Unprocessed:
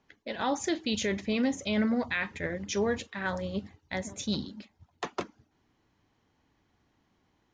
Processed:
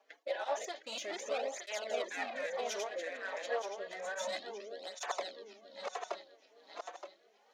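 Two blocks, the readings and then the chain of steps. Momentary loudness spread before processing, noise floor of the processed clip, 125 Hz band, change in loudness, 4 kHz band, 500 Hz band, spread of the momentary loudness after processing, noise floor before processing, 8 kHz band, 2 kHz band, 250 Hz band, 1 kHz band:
11 LU, -69 dBFS, under -30 dB, -8.0 dB, -6.0 dB, -3.5 dB, 11 LU, -73 dBFS, -4.5 dB, -6.0 dB, -24.5 dB, -2.5 dB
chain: backward echo that repeats 461 ms, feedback 53%, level -1 dB; compression 1.5:1, threshold -52 dBFS, peak gain reduction 11.5 dB; saturation -34 dBFS, distortion -14 dB; ladder high-pass 530 Hz, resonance 55%; rotary cabinet horn 5 Hz, later 1.2 Hz, at 1.74 s; cancelling through-zero flanger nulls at 0.3 Hz, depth 5.7 ms; trim +18 dB

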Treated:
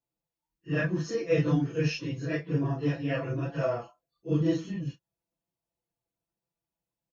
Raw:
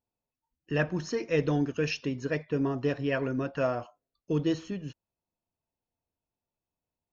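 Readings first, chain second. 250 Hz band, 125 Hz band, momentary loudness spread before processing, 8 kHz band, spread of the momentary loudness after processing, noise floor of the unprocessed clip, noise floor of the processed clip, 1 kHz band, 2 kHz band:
+0.5 dB, +4.5 dB, 5 LU, no reading, 9 LU, under -85 dBFS, under -85 dBFS, -2.0 dB, -1.0 dB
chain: phase randomisation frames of 100 ms; high-pass 50 Hz; bass shelf 160 Hz +5.5 dB; comb 6 ms, depth 89%; trim -3.5 dB

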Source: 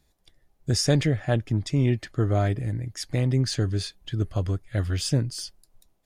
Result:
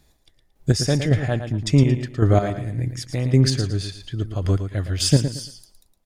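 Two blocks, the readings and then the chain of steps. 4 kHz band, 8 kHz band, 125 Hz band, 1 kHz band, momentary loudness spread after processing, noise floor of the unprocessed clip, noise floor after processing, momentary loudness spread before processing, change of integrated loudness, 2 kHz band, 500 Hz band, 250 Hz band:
+4.0 dB, +4.0 dB, +4.5 dB, +4.5 dB, 10 LU, -68 dBFS, -63 dBFS, 9 LU, +4.5 dB, +3.0 dB, +4.0 dB, +5.0 dB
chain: square tremolo 1.8 Hz, depth 60%, duty 30%; feedback delay 113 ms, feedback 27%, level -9 dB; trim +8 dB

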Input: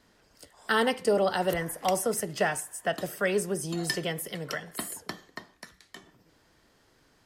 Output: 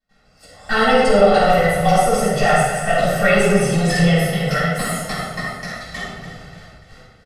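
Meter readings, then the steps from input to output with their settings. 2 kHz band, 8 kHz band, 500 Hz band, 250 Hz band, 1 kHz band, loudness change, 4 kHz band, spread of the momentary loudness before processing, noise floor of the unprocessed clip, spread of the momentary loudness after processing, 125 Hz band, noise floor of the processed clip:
+13.0 dB, +7.0 dB, +12.5 dB, +14.5 dB, +15.0 dB, +12.5 dB, +10.5 dB, 15 LU, -65 dBFS, 16 LU, +19.0 dB, -54 dBFS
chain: single-diode clipper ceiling -20.5 dBFS; gate with hold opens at -53 dBFS; treble shelf 11 kHz +10 dB; comb 1.5 ms, depth 76%; in parallel at 0 dB: peak limiter -21 dBFS, peak gain reduction 10 dB; on the sum: level rider gain up to 15 dB; distance through air 66 m; on a send: thinning echo 292 ms, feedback 47%, level -12 dB; on the sum: simulated room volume 650 m³, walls mixed, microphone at 8.9 m; trim -15 dB

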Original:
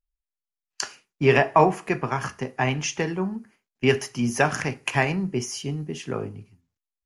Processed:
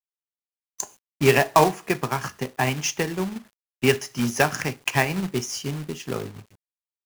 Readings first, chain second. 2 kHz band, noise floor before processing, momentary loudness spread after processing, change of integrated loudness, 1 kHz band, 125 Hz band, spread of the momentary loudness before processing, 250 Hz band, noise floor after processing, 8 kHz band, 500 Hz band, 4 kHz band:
+0.5 dB, under -85 dBFS, 14 LU, +0.5 dB, 0.0 dB, -0.5 dB, 13 LU, -0.5 dB, under -85 dBFS, +3.5 dB, 0.0 dB, +3.0 dB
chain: transient shaper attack +2 dB, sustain -3 dB; dynamic bell 5.5 kHz, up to +4 dB, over -43 dBFS, Q 0.91; time-frequency box 0.37–1.06 s, 1.1–6 kHz -18 dB; companded quantiser 4-bit; trim -1 dB

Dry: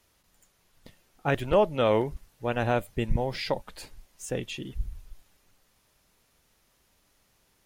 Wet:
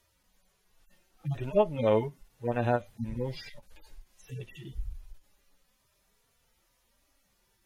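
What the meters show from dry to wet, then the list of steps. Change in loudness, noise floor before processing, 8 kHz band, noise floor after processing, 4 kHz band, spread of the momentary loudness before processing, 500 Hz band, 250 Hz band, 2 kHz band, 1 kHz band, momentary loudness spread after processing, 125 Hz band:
-2.0 dB, -68 dBFS, under -10 dB, -72 dBFS, -10.5 dB, 18 LU, -3.0 dB, -3.0 dB, -8.0 dB, -4.5 dB, 17 LU, -2.0 dB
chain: harmonic-percussive separation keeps harmonic; endings held to a fixed fall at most 350 dB/s

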